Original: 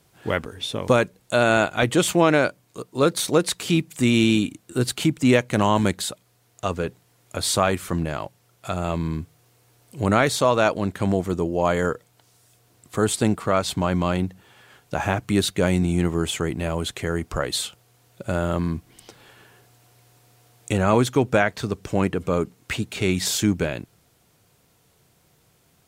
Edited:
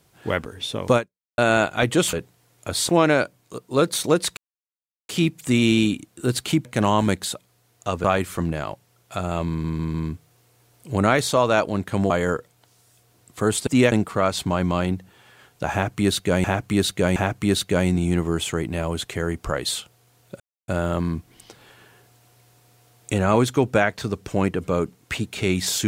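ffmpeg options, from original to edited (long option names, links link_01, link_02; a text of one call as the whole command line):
ffmpeg -i in.wav -filter_complex "[0:a]asplit=16[link_01][link_02][link_03][link_04][link_05][link_06][link_07][link_08][link_09][link_10][link_11][link_12][link_13][link_14][link_15][link_16];[link_01]atrim=end=1.38,asetpts=PTS-STARTPTS,afade=type=out:start_time=0.97:duration=0.41:curve=exp[link_17];[link_02]atrim=start=1.38:end=2.132,asetpts=PTS-STARTPTS,afade=type=in:duration=0.004:curve=hsin[link_18];[link_03]atrim=start=6.808:end=7.572[link_19];[link_04]atrim=start=2.128:end=3.61,asetpts=PTS-STARTPTS,afade=type=out:start_time=1.478:duration=0.004:curve=hsin,apad=pad_dur=0.72[link_20];[link_05]atrim=start=3.61:end=5.172,asetpts=PTS-STARTPTS,afade=type=in:duration=0.004:curve=hsin[link_21];[link_06]atrim=start=5.418:end=6.812[link_22];[link_07]atrim=start=7.568:end=9.172[link_23];[link_08]atrim=start=9.018:end=9.172[link_24];[link_09]atrim=start=9.018:end=9.172[link_25];[link_10]atrim=start=9.018:end=11.182[link_26];[link_11]atrim=start=11.658:end=13.232[link_27];[link_12]atrim=start=5.168:end=5.422[link_28];[link_13]atrim=start=13.228:end=15.752[link_29];[link_14]atrim=start=15.028:end=15.752[link_30];[link_15]atrim=start=15.028:end=18.27,asetpts=PTS-STARTPTS,afade=type=out:start_time=3.238:duration=0.004:curve=hsin,apad=pad_dur=0.28[link_31];[link_16]atrim=start=18.27,asetpts=PTS-STARTPTS,afade=type=in:duration=0.004:curve=hsin[link_32];[link_17][link_18]concat=n=2:v=0:a=1[link_33];[link_33][link_19]acrossfade=duration=0.004:curve1=hsin:curve2=hsin[link_34];[link_20][link_21]concat=n=2:v=0:a=1[link_35];[link_34][link_35]acrossfade=duration=0.004:curve1=hsin:curve2=hsin[link_36];[link_36][link_22]acrossfade=duration=0.004:curve1=hsin:curve2=hsin[link_37];[link_37][link_23]acrossfade=duration=0.004:curve1=hsin:curve2=hsin[link_38];[link_38][link_24]acrossfade=duration=0.004:curve1=hsin:curve2=hsin[link_39];[link_39][link_25]acrossfade=duration=0.004:curve1=hsin:curve2=hsin[link_40];[link_40][link_26]acrossfade=duration=0.004:curve1=hsin:curve2=hsin[link_41];[link_41][link_27]acrossfade=duration=0.004:curve1=hsin:curve2=hsin[link_42];[link_42][link_28]acrossfade=duration=0.004:curve1=hsin:curve2=hsin[link_43];[link_43][link_29]acrossfade=duration=0.004:curve1=hsin:curve2=hsin[link_44];[link_44][link_30]acrossfade=duration=0.004:curve1=hsin:curve2=hsin[link_45];[link_31][link_32]concat=n=2:v=0:a=1[link_46];[link_45][link_46]acrossfade=duration=0.004:curve1=hsin:curve2=hsin" out.wav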